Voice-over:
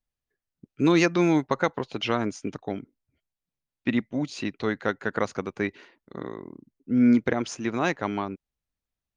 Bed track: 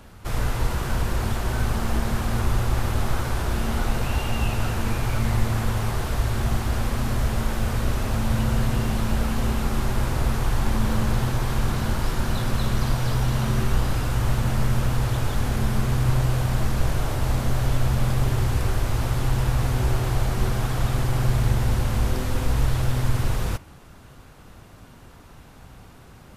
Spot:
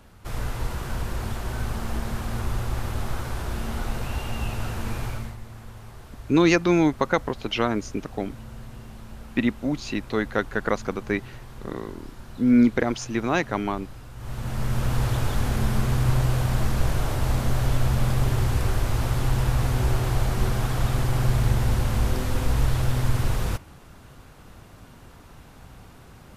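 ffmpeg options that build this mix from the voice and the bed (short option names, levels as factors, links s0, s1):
-filter_complex "[0:a]adelay=5500,volume=1.26[s0];[1:a]volume=4.22,afade=t=out:st=5.04:d=0.32:silence=0.223872,afade=t=in:st=14.16:d=0.84:silence=0.133352[s1];[s0][s1]amix=inputs=2:normalize=0"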